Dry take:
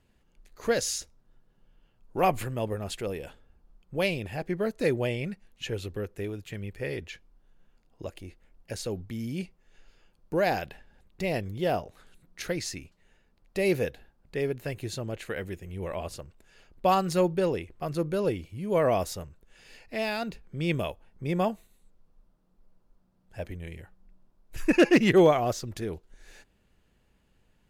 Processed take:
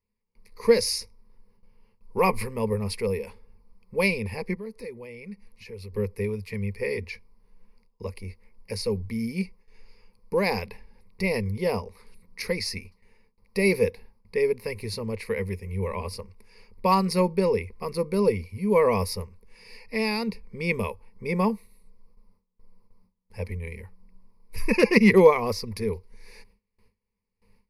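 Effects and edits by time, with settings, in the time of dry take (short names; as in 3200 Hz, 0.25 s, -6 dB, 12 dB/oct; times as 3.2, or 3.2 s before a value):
4.54–5.93 compressor 3:1, threshold -46 dBFS
whole clip: gate with hold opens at -54 dBFS; ripple EQ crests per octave 0.88, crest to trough 18 dB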